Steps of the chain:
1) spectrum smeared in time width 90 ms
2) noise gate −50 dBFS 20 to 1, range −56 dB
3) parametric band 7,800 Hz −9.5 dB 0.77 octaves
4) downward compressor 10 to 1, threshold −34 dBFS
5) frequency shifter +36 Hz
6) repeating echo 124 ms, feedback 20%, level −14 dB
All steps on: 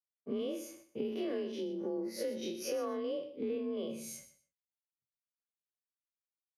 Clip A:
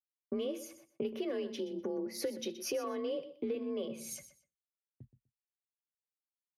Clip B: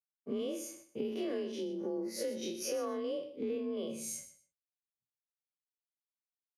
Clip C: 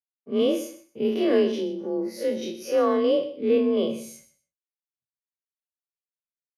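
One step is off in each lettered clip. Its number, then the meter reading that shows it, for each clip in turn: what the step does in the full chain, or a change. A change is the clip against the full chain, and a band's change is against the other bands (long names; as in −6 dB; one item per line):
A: 1, 8 kHz band +2.0 dB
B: 3, 8 kHz band +5.5 dB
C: 4, change in momentary loudness spread +1 LU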